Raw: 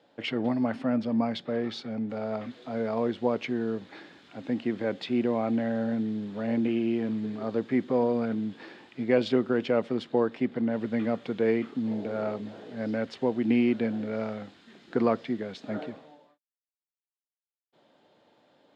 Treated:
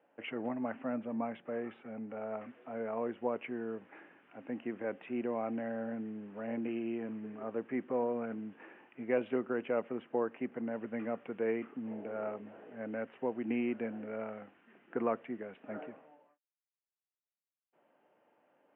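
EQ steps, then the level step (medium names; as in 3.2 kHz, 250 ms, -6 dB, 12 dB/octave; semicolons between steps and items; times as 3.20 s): high-pass 390 Hz 6 dB/octave; elliptic low-pass 2.8 kHz, stop band 40 dB; distance through air 240 m; -4.0 dB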